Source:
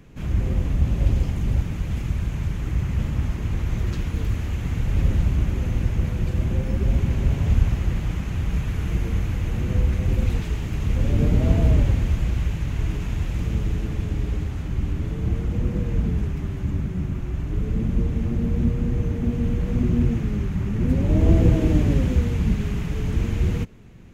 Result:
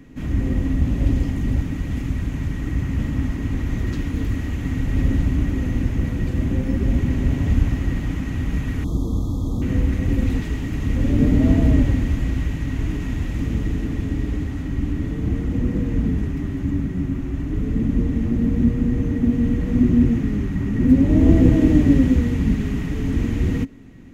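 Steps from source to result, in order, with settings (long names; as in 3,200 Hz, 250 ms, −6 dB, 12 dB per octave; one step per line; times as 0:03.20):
hollow resonant body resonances 270/1,900 Hz, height 15 dB, ringing for 75 ms
0:08.84–0:09.62: linear-phase brick-wall band-stop 1,300–3,200 Hz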